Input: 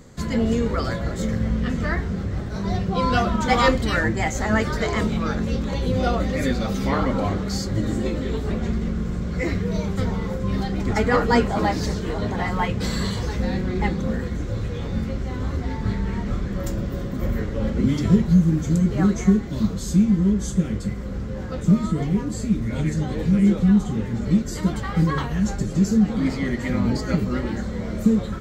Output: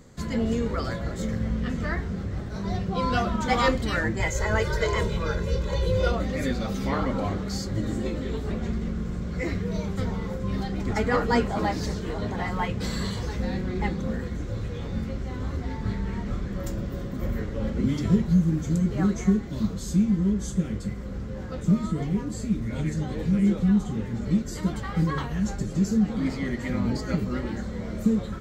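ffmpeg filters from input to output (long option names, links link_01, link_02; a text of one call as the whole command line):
ffmpeg -i in.wav -filter_complex "[0:a]asettb=1/sr,asplit=3[link_01][link_02][link_03];[link_01]atrim=end=4.204[link_04];[link_02]atrim=start=4.2:end=6.12,asetpts=PTS-STARTPTS,afade=type=in:duration=0.004:curve=qsin,afade=type=out:start_time=1.916:duration=0.004:curve=qsin,aecho=1:1:2:0.88,atrim=end_sample=84672[link_05];[link_03]atrim=start=6.116[link_06];[link_04][link_05]acrossfade=duration=0.004:curve1=hsin:curve2=qsin[link_07];[link_07][link_06]acrossfade=duration=0.004:curve1=qsin:curve2=hsin,volume=-4.5dB" out.wav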